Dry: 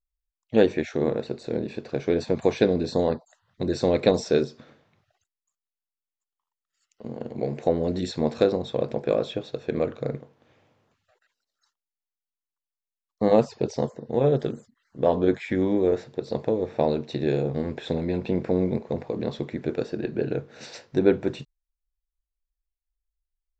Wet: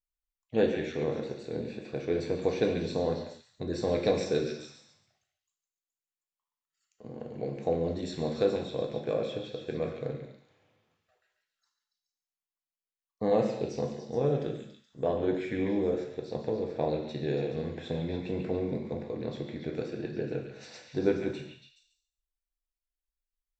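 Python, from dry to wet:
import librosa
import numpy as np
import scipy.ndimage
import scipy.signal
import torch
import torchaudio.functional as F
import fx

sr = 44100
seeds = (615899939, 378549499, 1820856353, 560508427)

y = fx.echo_stepped(x, sr, ms=141, hz=2500.0, octaves=0.7, feedback_pct=70, wet_db=-3)
y = fx.rev_gated(y, sr, seeds[0], gate_ms=290, shape='falling', drr_db=2.5)
y = y * librosa.db_to_amplitude(-8.5)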